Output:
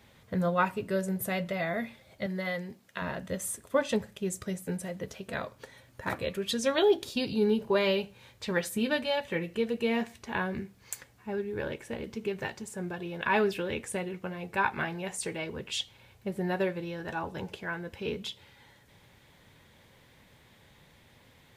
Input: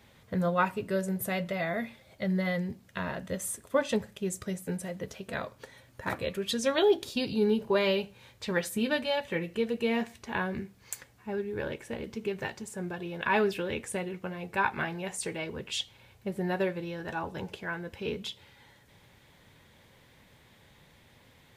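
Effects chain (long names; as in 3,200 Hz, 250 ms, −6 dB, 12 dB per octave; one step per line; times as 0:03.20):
0:02.26–0:03.02: high-pass filter 380 Hz 6 dB per octave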